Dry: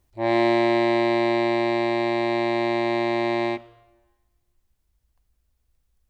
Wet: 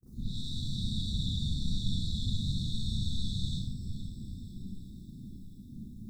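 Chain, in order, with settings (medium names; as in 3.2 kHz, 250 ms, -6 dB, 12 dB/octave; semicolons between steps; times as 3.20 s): peak limiter -16 dBFS, peak gain reduction 6 dB; FFT band-reject 150–3700 Hz; on a send: multi-head delay 163 ms, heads all three, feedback 68%, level -16 dB; on the sum: frequency shift -170 Hz; ten-band graphic EQ 125 Hz +12 dB, 250 Hz +12 dB, 4 kHz +6 dB; gate with hold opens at -51 dBFS; peaking EQ 3.9 kHz -12 dB 0.91 oct; whisper effect; Schroeder reverb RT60 0.48 s, combs from 29 ms, DRR -8 dB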